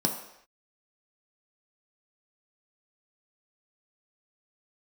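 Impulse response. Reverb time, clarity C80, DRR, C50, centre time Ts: no single decay rate, 10.0 dB, 2.0 dB, 7.5 dB, 24 ms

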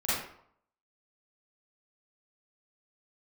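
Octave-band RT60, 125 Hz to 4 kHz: 0.65 s, 0.60 s, 0.65 s, 0.65 s, 0.50 s, 0.40 s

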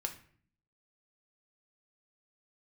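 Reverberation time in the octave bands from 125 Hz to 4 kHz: 0.85 s, 0.85 s, 0.55 s, 0.50 s, 0.50 s, 0.40 s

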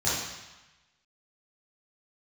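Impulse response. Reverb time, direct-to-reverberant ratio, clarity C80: 1.1 s, -10.0 dB, 2.5 dB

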